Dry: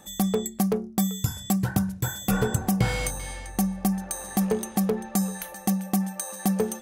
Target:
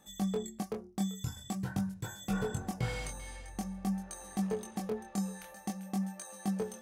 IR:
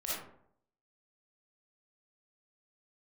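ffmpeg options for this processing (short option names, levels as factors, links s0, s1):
-filter_complex "[0:a]flanger=delay=19.5:depth=5.6:speed=0.47,acrossover=split=9100[s0][s1];[s1]acompressor=threshold=0.00282:ratio=4:attack=1:release=60[s2];[s0][s2]amix=inputs=2:normalize=0,volume=0.422"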